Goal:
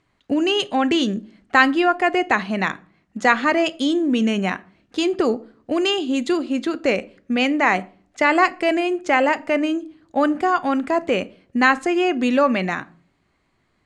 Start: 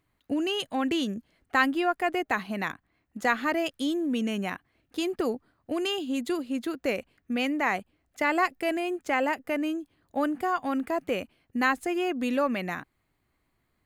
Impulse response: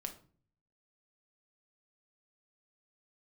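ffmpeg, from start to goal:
-filter_complex "[0:a]lowpass=f=7700:w=0.5412,lowpass=f=7700:w=1.3066,lowshelf=f=69:g=-8,asplit=2[s0][s1];[1:a]atrim=start_sample=2205[s2];[s1][s2]afir=irnorm=-1:irlink=0,volume=0.596[s3];[s0][s3]amix=inputs=2:normalize=0,volume=2"

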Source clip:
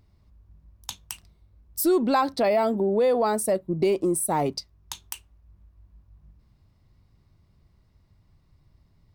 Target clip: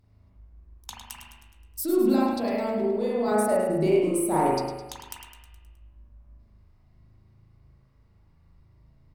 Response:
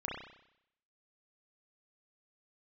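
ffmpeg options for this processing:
-filter_complex "[0:a]asettb=1/sr,asplit=3[s0][s1][s2];[s0]atrim=end=0.904[s3];[s1]atrim=start=0.9:end=3.28,asetpts=PTS-STARTPTS,afade=t=in:d=0.004:c=qsin,afade=t=out:st=2.376:d=0.004:c=qsin,acrossover=split=290|3000[s4][s5][s6];[s5]acompressor=threshold=0.0251:ratio=3[s7];[s4][s7][s6]amix=inputs=3:normalize=0[s8];[s2]atrim=start=3.276[s9];[s3][s8]acrossfade=d=0.004:c1=hsin:c2=qsin[s10];[s10][s9]acrossfade=d=0.004:c1=qsin:c2=hsin,aecho=1:1:105|210|315|420|525|630:0.335|0.184|0.101|0.0557|0.0307|0.0169[s11];[1:a]atrim=start_sample=2205,asetrate=36162,aresample=44100[s12];[s11][s12]afir=irnorm=-1:irlink=0,volume=0.708"

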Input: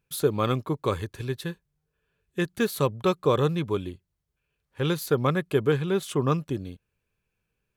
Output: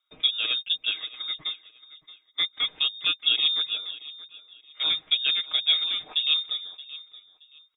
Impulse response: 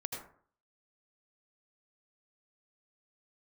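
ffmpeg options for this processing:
-filter_complex "[0:a]aecho=1:1:6.3:0.64,lowpass=f=3200:t=q:w=0.5098,lowpass=f=3200:t=q:w=0.6013,lowpass=f=3200:t=q:w=0.9,lowpass=f=3200:t=q:w=2.563,afreqshift=-3800,asplit=2[s0][s1];[s1]aecho=0:1:624|1248:0.133|0.0347[s2];[s0][s2]amix=inputs=2:normalize=0,volume=0.708"

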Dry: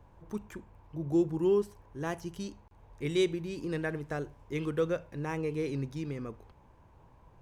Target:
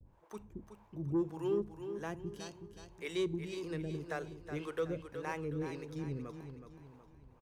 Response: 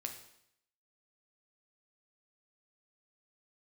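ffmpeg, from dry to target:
-filter_complex "[0:a]acrossover=split=420[s0][s1];[s0]aeval=exprs='val(0)*(1-1/2+1/2*cos(2*PI*1.8*n/s))':c=same[s2];[s1]aeval=exprs='val(0)*(1-1/2-1/2*cos(2*PI*1.8*n/s))':c=same[s3];[s2][s3]amix=inputs=2:normalize=0,asoftclip=type=tanh:threshold=0.0562,aecho=1:1:371|742|1113|1484|1855:0.355|0.153|0.0656|0.0282|0.0121,agate=range=0.0224:threshold=0.00112:ratio=3:detection=peak,asplit=2[s4][s5];[1:a]atrim=start_sample=2205,asetrate=39249,aresample=44100[s6];[s5][s6]afir=irnorm=-1:irlink=0,volume=0.141[s7];[s4][s7]amix=inputs=2:normalize=0,volume=0.891"

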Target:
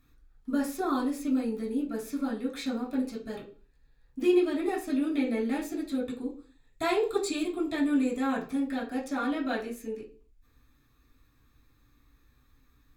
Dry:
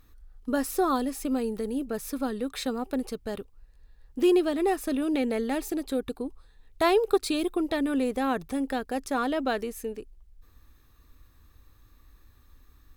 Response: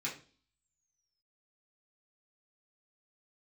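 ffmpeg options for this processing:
-filter_complex "[0:a]asettb=1/sr,asplit=3[s0][s1][s2];[s0]atrim=end=6.064[s3];[s1]atrim=start=6.06:end=8.4,asetpts=PTS-STARTPTS,afade=t=in:d=0.004:c=qsin,afade=t=out:st=2.336:d=0.004:c=qsin,equalizer=f=7500:w=5.2:g=11.5[s4];[s2]atrim=start=8.396[s5];[s3][s4]acrossfade=d=0.004:c1=hsin:c2=qsin[s6];[s6][s5]acrossfade=d=0.004:c1=qsin:c2=hsin[s7];[1:a]atrim=start_sample=2205,afade=t=out:st=0.35:d=0.01,atrim=end_sample=15876[s8];[s7][s8]afir=irnorm=-1:irlink=0,volume=0.531"

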